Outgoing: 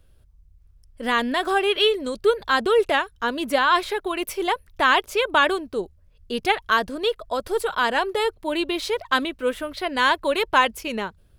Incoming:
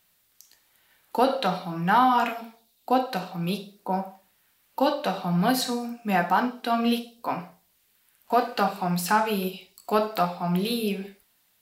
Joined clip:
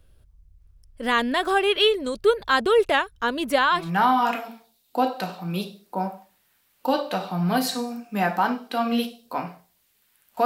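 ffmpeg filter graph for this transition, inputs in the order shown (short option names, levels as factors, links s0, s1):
-filter_complex "[0:a]apad=whole_dur=10.45,atrim=end=10.45,atrim=end=3.92,asetpts=PTS-STARTPTS[s0];[1:a]atrim=start=1.57:end=8.38,asetpts=PTS-STARTPTS[s1];[s0][s1]acrossfade=d=0.28:c1=tri:c2=tri"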